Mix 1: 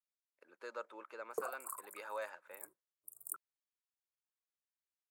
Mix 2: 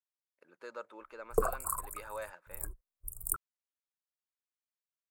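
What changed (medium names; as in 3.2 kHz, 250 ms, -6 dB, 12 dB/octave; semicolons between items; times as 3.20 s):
background +10.0 dB; master: remove Bessel high-pass 320 Hz, order 4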